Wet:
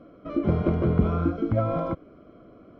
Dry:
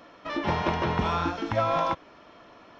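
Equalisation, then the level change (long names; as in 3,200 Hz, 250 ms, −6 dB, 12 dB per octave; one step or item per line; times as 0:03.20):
moving average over 49 samples
+8.0 dB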